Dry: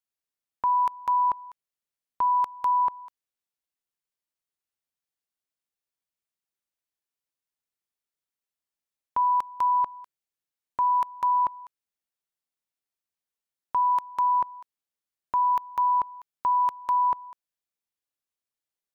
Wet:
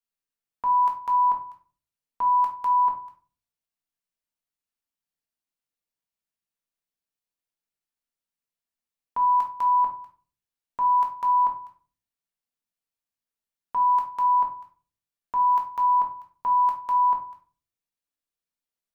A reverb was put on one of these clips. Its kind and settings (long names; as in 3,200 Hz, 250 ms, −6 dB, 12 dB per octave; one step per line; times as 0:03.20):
rectangular room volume 250 cubic metres, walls furnished, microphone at 1.7 metres
level −4 dB